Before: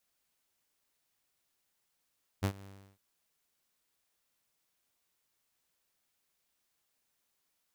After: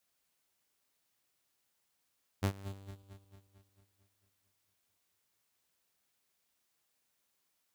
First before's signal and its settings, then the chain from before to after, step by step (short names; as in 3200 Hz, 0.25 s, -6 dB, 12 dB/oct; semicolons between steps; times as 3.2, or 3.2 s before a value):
ADSR saw 98.1 Hz, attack 25 ms, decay 77 ms, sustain -22 dB, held 0.22 s, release 0.338 s -23.5 dBFS
regenerating reverse delay 0.112 s, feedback 75%, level -13.5 dB; HPF 44 Hz